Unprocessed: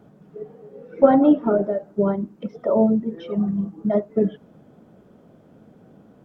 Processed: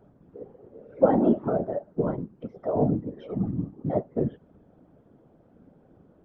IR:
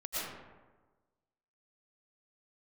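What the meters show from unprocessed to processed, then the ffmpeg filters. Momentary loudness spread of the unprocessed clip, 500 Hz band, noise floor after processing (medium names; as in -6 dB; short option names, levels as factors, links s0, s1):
17 LU, -6.0 dB, -59 dBFS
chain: -af "highshelf=f=2700:g=-12,afftfilt=real='hypot(re,im)*cos(2*PI*random(0))':imag='hypot(re,im)*sin(2*PI*random(1))':win_size=512:overlap=0.75"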